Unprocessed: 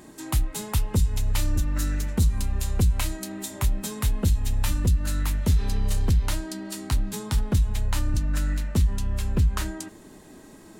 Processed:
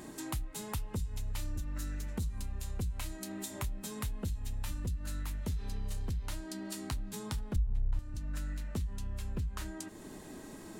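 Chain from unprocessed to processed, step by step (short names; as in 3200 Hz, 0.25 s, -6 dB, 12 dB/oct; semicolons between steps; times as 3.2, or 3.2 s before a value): 7.56–7.99 tilt -3.5 dB/oct; compressor 2.5:1, threshold -41 dBFS, peak gain reduction 24.5 dB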